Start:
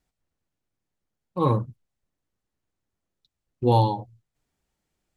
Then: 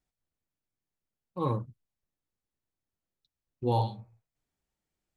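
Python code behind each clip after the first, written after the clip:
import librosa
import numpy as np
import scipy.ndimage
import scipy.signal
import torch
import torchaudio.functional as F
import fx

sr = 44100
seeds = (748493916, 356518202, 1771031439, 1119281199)

y = fx.spec_repair(x, sr, seeds[0], start_s=3.8, length_s=0.48, low_hz=280.0, high_hz=2600.0, source='both')
y = F.gain(torch.from_numpy(y), -8.0).numpy()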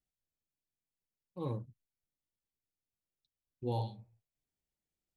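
y = fx.peak_eq(x, sr, hz=1200.0, db=-9.5, octaves=0.87)
y = F.gain(torch.from_numpy(y), -7.0).numpy()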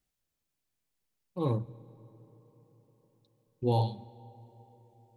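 y = fx.rev_freeverb(x, sr, rt60_s=4.9, hf_ratio=0.5, predelay_ms=60, drr_db=20.0)
y = F.gain(torch.from_numpy(y), 8.0).numpy()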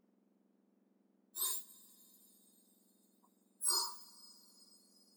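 y = fx.octave_mirror(x, sr, pivot_hz=2000.0)
y = F.gain(torch.from_numpy(y), 2.0).numpy()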